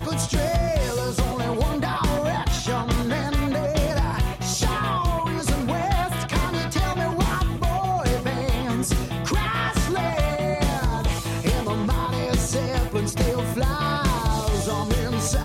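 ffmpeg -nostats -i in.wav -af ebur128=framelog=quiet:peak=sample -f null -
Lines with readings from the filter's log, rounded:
Integrated loudness:
  I:         -24.0 LUFS
  Threshold: -34.0 LUFS
Loudness range:
  LRA:         0.3 LU
  Threshold: -44.1 LUFS
  LRA low:   -24.2 LUFS
  LRA high:  -23.9 LUFS
Sample peak:
  Peak:      -12.2 dBFS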